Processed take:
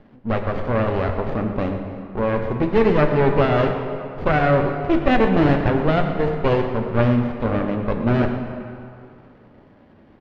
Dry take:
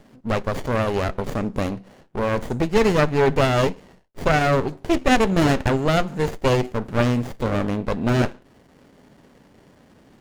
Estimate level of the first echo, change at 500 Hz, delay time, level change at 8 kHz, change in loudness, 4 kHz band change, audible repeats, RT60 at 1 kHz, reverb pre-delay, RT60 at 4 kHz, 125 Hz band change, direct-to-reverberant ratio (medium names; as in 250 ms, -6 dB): -13.5 dB, +2.0 dB, 121 ms, under -20 dB, +1.0 dB, -5.5 dB, 1, 2.7 s, 3 ms, 1.7 s, +2.0 dB, 4.0 dB